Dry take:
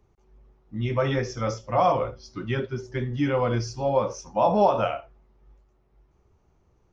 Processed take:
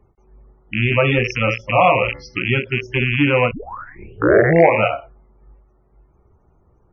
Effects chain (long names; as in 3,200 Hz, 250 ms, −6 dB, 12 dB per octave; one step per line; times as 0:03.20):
loose part that buzzes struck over −38 dBFS, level −15 dBFS
0:01.72–0:02.52: hum removal 71.33 Hz, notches 30
0:03.51: tape start 1.32 s
spectral peaks only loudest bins 64
every ending faded ahead of time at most 250 dB per second
level +7.5 dB